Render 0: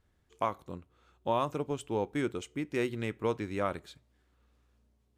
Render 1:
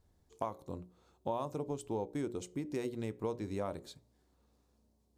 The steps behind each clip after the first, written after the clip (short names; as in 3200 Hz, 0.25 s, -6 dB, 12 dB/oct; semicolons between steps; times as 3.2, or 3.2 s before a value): band shelf 2000 Hz -9.5 dB; notches 60/120/180/240/300/360/420/480/540/600 Hz; compressor 2.5:1, threshold -38 dBFS, peak gain reduction 9 dB; gain +2 dB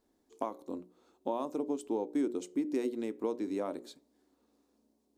resonant low shelf 180 Hz -14 dB, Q 3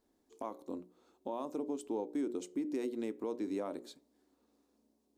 limiter -26.5 dBFS, peak gain reduction 8.5 dB; gain -1.5 dB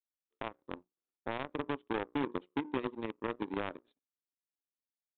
power-law curve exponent 2; in parallel at -4 dB: bit-crush 5-bit; on the sum: downsampling 8000 Hz; gain +1 dB